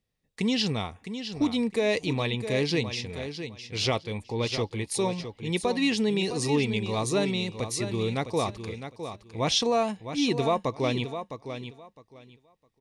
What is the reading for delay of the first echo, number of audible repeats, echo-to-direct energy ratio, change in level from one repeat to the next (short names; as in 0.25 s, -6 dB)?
0.659 s, 2, -9.5 dB, -14.0 dB